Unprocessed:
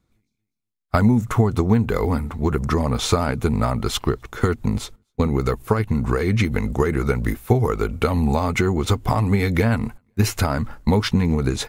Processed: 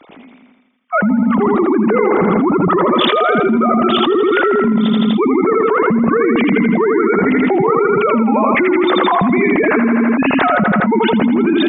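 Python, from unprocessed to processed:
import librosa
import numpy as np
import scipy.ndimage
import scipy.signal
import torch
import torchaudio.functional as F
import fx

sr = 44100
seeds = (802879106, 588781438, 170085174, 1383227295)

y = fx.sine_speech(x, sr)
y = fx.echo_feedback(y, sr, ms=82, feedback_pct=56, wet_db=-5)
y = fx.env_flatten(y, sr, amount_pct=100)
y = y * 10.0 ** (-7.0 / 20.0)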